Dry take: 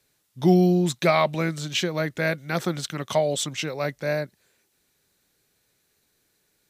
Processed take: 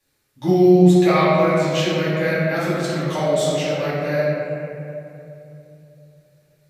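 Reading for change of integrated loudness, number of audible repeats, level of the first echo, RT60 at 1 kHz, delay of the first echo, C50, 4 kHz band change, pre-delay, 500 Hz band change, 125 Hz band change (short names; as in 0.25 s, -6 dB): +6.0 dB, none, none, 2.6 s, none, -3.0 dB, +1.5 dB, 3 ms, +7.5 dB, +5.5 dB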